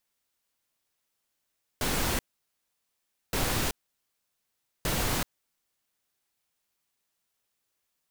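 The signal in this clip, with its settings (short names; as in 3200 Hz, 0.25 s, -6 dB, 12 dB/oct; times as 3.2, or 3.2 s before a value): noise bursts pink, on 0.38 s, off 1.14 s, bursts 3, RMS -28 dBFS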